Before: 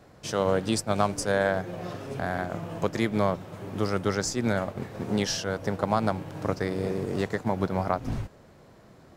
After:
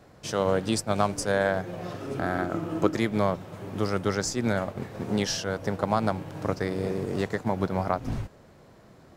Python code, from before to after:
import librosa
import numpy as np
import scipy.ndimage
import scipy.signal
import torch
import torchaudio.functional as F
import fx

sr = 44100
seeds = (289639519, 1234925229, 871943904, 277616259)

y = fx.small_body(x, sr, hz=(320.0, 1300.0), ring_ms=45, db=fx.line((2.01, 11.0), (2.94, 14.0)), at=(2.01, 2.94), fade=0.02)